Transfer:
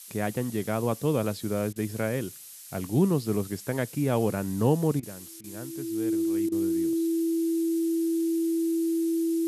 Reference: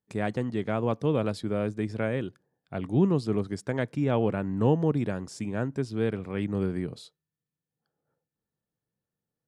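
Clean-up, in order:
notch filter 330 Hz, Q 30
repair the gap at 0:01.73/0:05.00/0:05.41/0:06.49, 28 ms
noise reduction from a noise print 30 dB
level correction +11 dB, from 0:05.01

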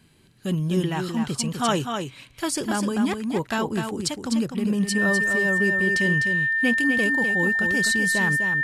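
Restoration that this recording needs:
notch filter 1,800 Hz, Q 30
echo removal 252 ms −6 dB

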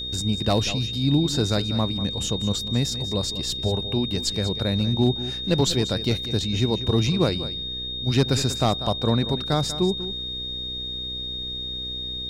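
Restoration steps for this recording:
clipped peaks rebuilt −11 dBFS
hum removal 62.7 Hz, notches 8
notch filter 3,700 Hz, Q 30
echo removal 192 ms −13.5 dB

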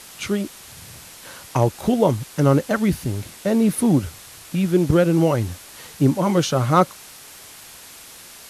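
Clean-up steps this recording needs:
clipped peaks rebuilt −5 dBFS
click removal
noise reduction from a noise print 22 dB

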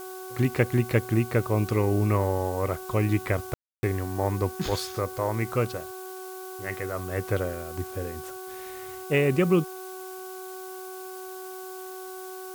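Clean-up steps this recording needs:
hum removal 374 Hz, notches 4
ambience match 0:03.54–0:03.83
broadband denoise 30 dB, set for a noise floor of −39 dBFS

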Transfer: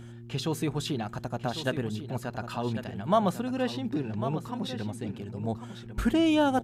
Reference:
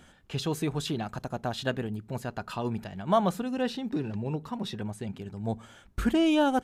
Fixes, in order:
hum removal 117.4 Hz, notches 3
echo removal 1,098 ms −11 dB

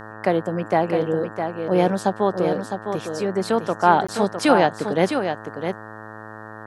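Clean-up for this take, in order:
hum removal 108.5 Hz, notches 17
repair the gap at 0:04.07, 15 ms
echo removal 658 ms −7 dB

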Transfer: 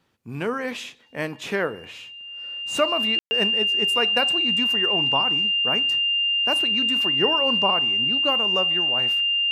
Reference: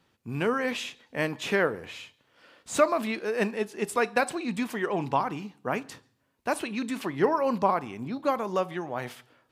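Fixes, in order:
notch filter 2,800 Hz, Q 30
ambience match 0:03.19–0:03.31

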